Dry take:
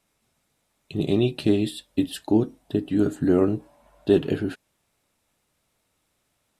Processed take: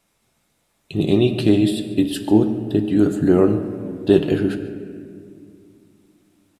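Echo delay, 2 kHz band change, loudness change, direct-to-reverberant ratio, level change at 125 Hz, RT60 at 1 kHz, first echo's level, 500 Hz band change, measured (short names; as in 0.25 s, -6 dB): 0.143 s, +5.5 dB, +5.5 dB, 7.0 dB, +6.0 dB, 1.9 s, -19.0 dB, +5.0 dB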